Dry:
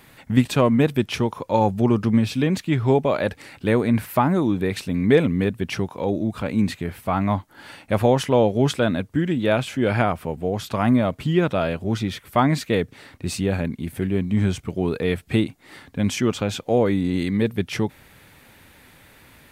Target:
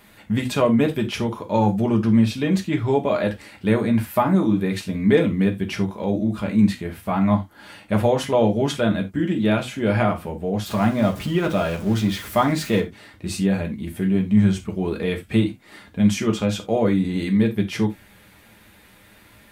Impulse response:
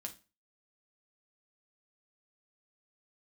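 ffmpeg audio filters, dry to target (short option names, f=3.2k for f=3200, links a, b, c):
-filter_complex "[0:a]asettb=1/sr,asplit=3[a][b][c];[a]atrim=end=10.664[d];[b]atrim=start=10.66:end=12.8,asetpts=PTS-STARTPTS,afade=t=in:d=0.004:c=qsin,afade=t=out:st=2.136:d=0.004:c=qsin,aeval=exprs='val(0)+0.5*0.0266*sgn(val(0))':c=same[e];[c]atrim=start=12.796[f];[d][e]acrossfade=d=0.004:c1=hsin:c2=qsin[g];[g][f]acrossfade=d=0.004:c1=qsin:c2=hsin[h];[1:a]atrim=start_sample=2205,afade=t=out:st=0.14:d=0.01,atrim=end_sample=6615[i];[h][i]afir=irnorm=-1:irlink=0,volume=2.5dB"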